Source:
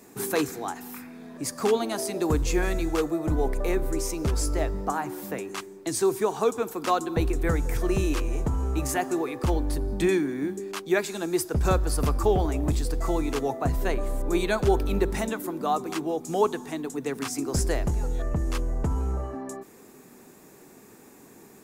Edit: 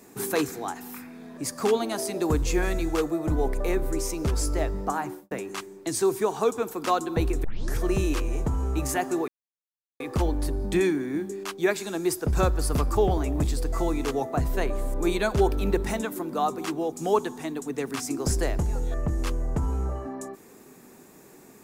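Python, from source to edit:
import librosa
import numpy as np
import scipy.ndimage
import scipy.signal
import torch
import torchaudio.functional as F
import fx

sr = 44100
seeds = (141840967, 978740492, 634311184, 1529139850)

y = fx.studio_fade_out(x, sr, start_s=5.05, length_s=0.26)
y = fx.edit(y, sr, fx.tape_start(start_s=7.44, length_s=0.33),
    fx.insert_silence(at_s=9.28, length_s=0.72), tone=tone)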